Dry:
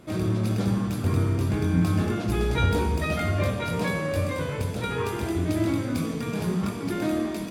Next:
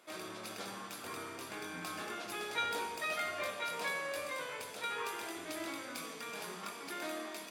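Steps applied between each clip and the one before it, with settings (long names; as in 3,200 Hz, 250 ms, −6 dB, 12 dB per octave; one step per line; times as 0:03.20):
Bessel high-pass filter 930 Hz, order 2
level −4.5 dB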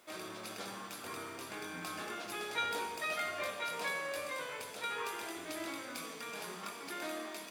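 bit reduction 11 bits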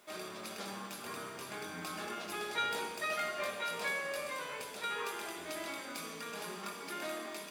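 rectangular room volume 3,600 cubic metres, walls furnished, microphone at 1.3 metres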